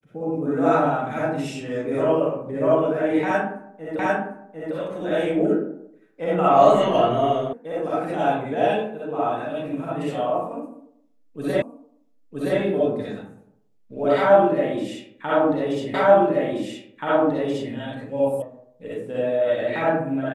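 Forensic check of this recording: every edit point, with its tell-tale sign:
3.99 s: repeat of the last 0.75 s
7.53 s: sound stops dead
11.62 s: repeat of the last 0.97 s
15.94 s: repeat of the last 1.78 s
18.42 s: sound stops dead

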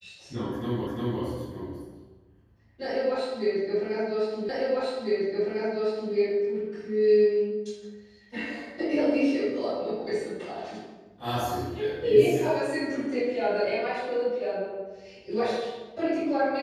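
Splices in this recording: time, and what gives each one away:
0.87 s: repeat of the last 0.35 s
4.49 s: repeat of the last 1.65 s

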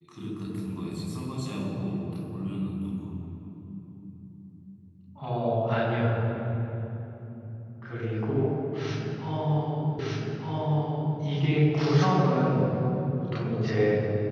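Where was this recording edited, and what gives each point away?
9.99 s: repeat of the last 1.21 s

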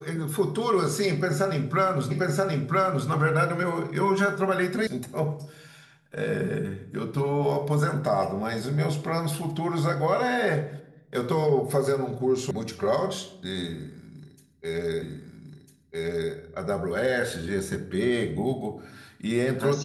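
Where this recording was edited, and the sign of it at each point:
2.11 s: repeat of the last 0.98 s
4.87 s: sound stops dead
12.51 s: sound stops dead
15.02 s: repeat of the last 1.3 s

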